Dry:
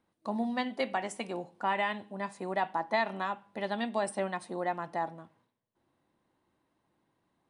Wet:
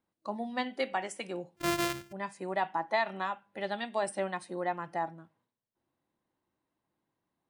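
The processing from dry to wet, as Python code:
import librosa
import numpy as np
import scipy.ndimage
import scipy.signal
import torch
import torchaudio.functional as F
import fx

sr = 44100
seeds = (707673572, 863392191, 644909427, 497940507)

y = fx.sample_sort(x, sr, block=128, at=(1.56, 2.11), fade=0.02)
y = fx.noise_reduce_blind(y, sr, reduce_db=8)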